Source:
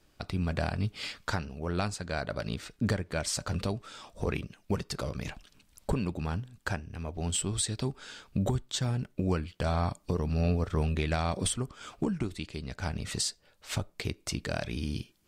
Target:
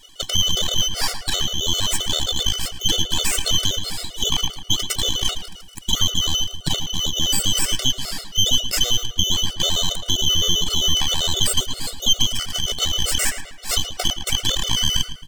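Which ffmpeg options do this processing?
-filter_complex "[0:a]afftfilt=real='real(if(lt(b,272),68*(eq(floor(b/68),0)*1+eq(floor(b/68),1)*3+eq(floor(b/68),2)*0+eq(floor(b/68),3)*2)+mod(b,68),b),0)':imag='imag(if(lt(b,272),68*(eq(floor(b/68),0)*1+eq(floor(b/68),1)*3+eq(floor(b/68),2)*0+eq(floor(b/68),3)*2)+mod(b,68),b),0)':win_size=2048:overlap=0.75,acrossover=split=2600[a][b];[b]acompressor=threshold=-33dB:ratio=4:attack=1:release=60[c];[a][c]amix=inputs=2:normalize=0,bass=f=250:g=4,treble=f=4k:g=13,acrossover=split=230|1200[d][e][f];[d]dynaudnorm=f=590:g=11:m=6.5dB[g];[e]tremolo=f=8.4:d=0.8[h];[g][h][f]amix=inputs=3:normalize=0,highpass=180,equalizer=f=250:t=q:w=4:g=-5,equalizer=f=360:t=q:w=4:g=-8,equalizer=f=710:t=q:w=4:g=7,equalizer=f=6k:t=q:w=4:g=-8,lowpass=f=9k:w=0.5412,lowpass=f=9k:w=1.3066,aeval=exprs='max(val(0),0)':c=same,asplit=2[i][j];[j]adelay=111,lowpass=f=3.6k:p=1,volume=-11dB,asplit=2[k][l];[l]adelay=111,lowpass=f=3.6k:p=1,volume=0.48,asplit=2[m][n];[n]adelay=111,lowpass=f=3.6k:p=1,volume=0.48,asplit=2[o][p];[p]adelay=111,lowpass=f=3.6k:p=1,volume=0.48,asplit=2[q][r];[r]adelay=111,lowpass=f=3.6k:p=1,volume=0.48[s];[k][m][o][q][s]amix=inputs=5:normalize=0[t];[i][t]amix=inputs=2:normalize=0,alimiter=level_in=21.5dB:limit=-1dB:release=50:level=0:latency=1,afftfilt=real='re*gt(sin(2*PI*7.6*pts/sr)*(1-2*mod(floor(b*sr/1024/380),2)),0)':imag='im*gt(sin(2*PI*7.6*pts/sr)*(1-2*mod(floor(b*sr/1024/380),2)),0)':win_size=1024:overlap=0.75,volume=-2dB"

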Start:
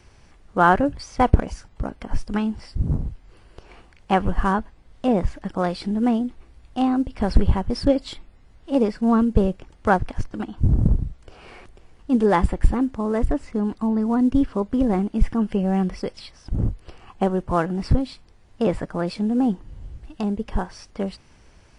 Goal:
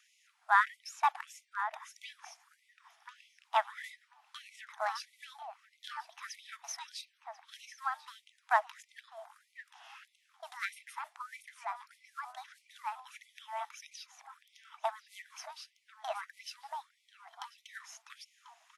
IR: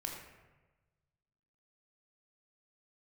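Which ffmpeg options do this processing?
-filter_complex "[0:a]asetrate=51156,aresample=44100,asplit=2[a][b];[b]adelay=1041,lowpass=f=1.8k:p=1,volume=-9dB,asplit=2[c][d];[d]adelay=1041,lowpass=f=1.8k:p=1,volume=0.21,asplit=2[e][f];[f]adelay=1041,lowpass=f=1.8k:p=1,volume=0.21[g];[a][c][e][g]amix=inputs=4:normalize=0,afftfilt=real='re*gte(b*sr/1024,620*pow(2000/620,0.5+0.5*sin(2*PI*1.6*pts/sr)))':imag='im*gte(b*sr/1024,620*pow(2000/620,0.5+0.5*sin(2*PI*1.6*pts/sr)))':win_size=1024:overlap=0.75,volume=-7.5dB"

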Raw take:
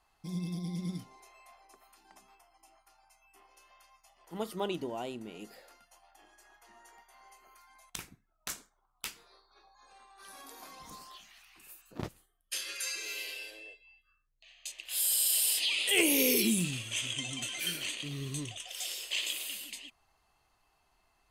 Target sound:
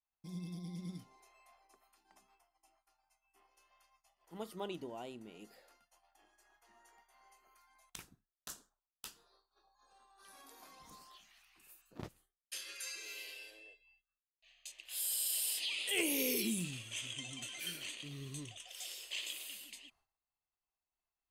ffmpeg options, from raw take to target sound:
-filter_complex "[0:a]agate=range=-33dB:threshold=-59dB:ratio=3:detection=peak,asettb=1/sr,asplit=3[a][b][c];[a]atrim=end=8.024[d];[b]atrim=start=8.02:end=10.25,asetpts=PTS-STARTPTS,afade=t=in:d=0.004:c=qsin,afade=t=out:st=2.226:d=0.004:c=qsin,equalizer=f=2.2k:t=o:w=0.32:g=-15[e];[c]atrim=start=10.246[f];[d][e]acrossfade=d=0.004:c1=hsin:c2=qsin[g];[g][f]acrossfade=d=0.004:c1=qsin:c2=hsin,volume=-8dB"

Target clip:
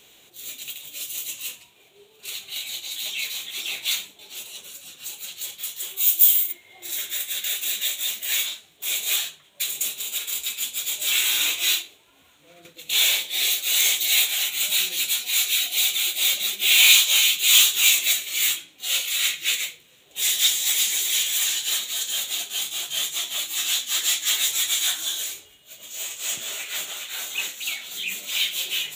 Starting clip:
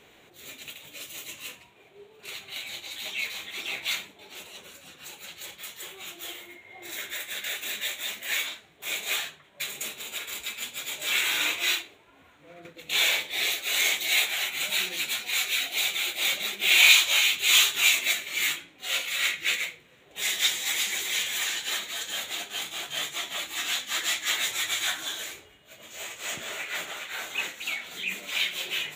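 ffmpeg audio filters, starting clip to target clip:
-filter_complex "[0:a]asplit=3[a][b][c];[a]afade=t=out:st=5.96:d=0.02[d];[b]aemphasis=mode=production:type=riaa,afade=t=in:st=5.96:d=0.02,afade=t=out:st=6.51:d=0.02[e];[c]afade=t=in:st=6.51:d=0.02[f];[d][e][f]amix=inputs=3:normalize=0,aexciter=amount=2:drive=9.1:freq=2.8k,volume=-3.5dB"

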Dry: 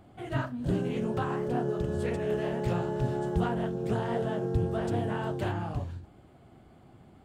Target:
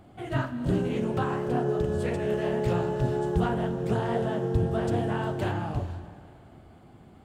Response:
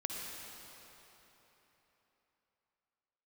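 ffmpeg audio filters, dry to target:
-filter_complex "[0:a]asplit=2[a][b];[1:a]atrim=start_sample=2205,asetrate=66150,aresample=44100[c];[b][c]afir=irnorm=-1:irlink=0,volume=-4dB[d];[a][d]amix=inputs=2:normalize=0"

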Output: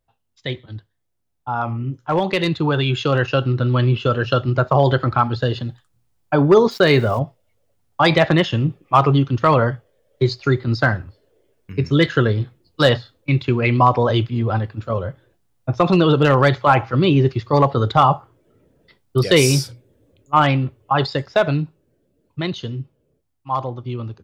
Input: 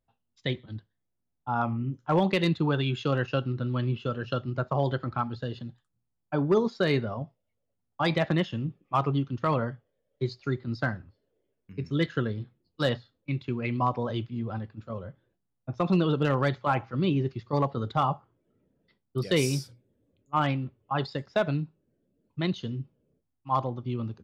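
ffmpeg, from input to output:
-filter_complex "[0:a]asplit=2[a][b];[b]alimiter=limit=-22dB:level=0:latency=1:release=29,volume=2dB[c];[a][c]amix=inputs=2:normalize=0,equalizer=f=210:t=o:w=0.8:g=-7.5,asplit=3[d][e][f];[d]afade=t=out:st=6.7:d=0.02[g];[e]aeval=exprs='val(0)*gte(abs(val(0)),0.00596)':c=same,afade=t=in:st=6.7:d=0.02,afade=t=out:st=7.18:d=0.02[h];[f]afade=t=in:st=7.18:d=0.02[i];[g][h][i]amix=inputs=3:normalize=0,dynaudnorm=f=290:g=21:m=11.5dB"

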